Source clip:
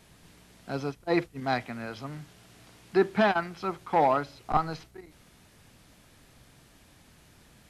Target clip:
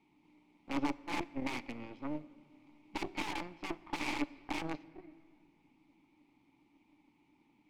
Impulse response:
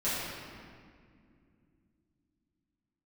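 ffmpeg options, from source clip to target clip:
-filter_complex "[0:a]aeval=exprs='(mod(17.8*val(0)+1,2)-1)/17.8':c=same,asplit=3[s0][s1][s2];[s0]bandpass=f=300:t=q:w=8,volume=1[s3];[s1]bandpass=f=870:t=q:w=8,volume=0.501[s4];[s2]bandpass=f=2240:t=q:w=8,volume=0.355[s5];[s3][s4][s5]amix=inputs=3:normalize=0,aeval=exprs='0.0251*(cos(1*acos(clip(val(0)/0.0251,-1,1)))-cos(1*PI/2))+0.00282*(cos(5*acos(clip(val(0)/0.0251,-1,1)))-cos(5*PI/2))+0.00355*(cos(6*acos(clip(val(0)/0.0251,-1,1)))-cos(6*PI/2))+0.00398*(cos(7*acos(clip(val(0)/0.0251,-1,1)))-cos(7*PI/2))':c=same,asplit=2[s6][s7];[1:a]atrim=start_sample=2205[s8];[s7][s8]afir=irnorm=-1:irlink=0,volume=0.0447[s9];[s6][s9]amix=inputs=2:normalize=0,volume=2.51"

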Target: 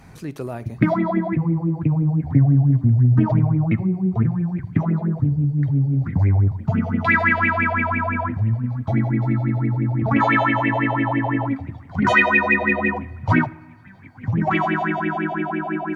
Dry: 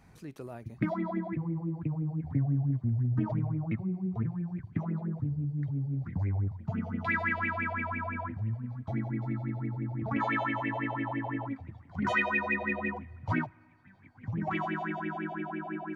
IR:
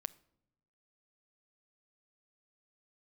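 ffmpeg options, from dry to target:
-filter_complex "[0:a]asplit=2[s0][s1];[1:a]atrim=start_sample=2205,asetrate=39249,aresample=44100[s2];[s1][s2]afir=irnorm=-1:irlink=0,volume=4.22[s3];[s0][s3]amix=inputs=2:normalize=0"

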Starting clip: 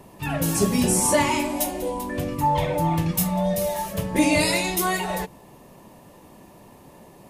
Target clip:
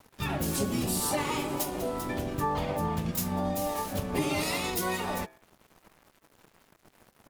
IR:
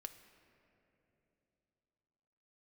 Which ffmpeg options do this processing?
-filter_complex "[0:a]aeval=exprs='sgn(val(0))*max(abs(val(0))-0.00708,0)':c=same,acompressor=threshold=0.0178:ratio=3,bandreject=f=130.7:t=h:w=4,bandreject=f=261.4:t=h:w=4,bandreject=f=392.1:t=h:w=4,bandreject=f=522.8:t=h:w=4,bandreject=f=653.5:t=h:w=4,bandreject=f=784.2:t=h:w=4,bandreject=f=914.9:t=h:w=4,bandreject=f=1045.6:t=h:w=4,bandreject=f=1176.3:t=h:w=4,bandreject=f=1307:t=h:w=4,bandreject=f=1437.7:t=h:w=4,bandreject=f=1568.4:t=h:w=4,bandreject=f=1699.1:t=h:w=4,bandreject=f=1829.8:t=h:w=4,bandreject=f=1960.5:t=h:w=4,bandreject=f=2091.2:t=h:w=4,asplit=4[s0][s1][s2][s3];[s1]asetrate=22050,aresample=44100,atempo=2,volume=0.501[s4];[s2]asetrate=58866,aresample=44100,atempo=0.749154,volume=0.631[s5];[s3]asetrate=88200,aresample=44100,atempo=0.5,volume=0.158[s6];[s0][s4][s5][s6]amix=inputs=4:normalize=0,volume=1.26"

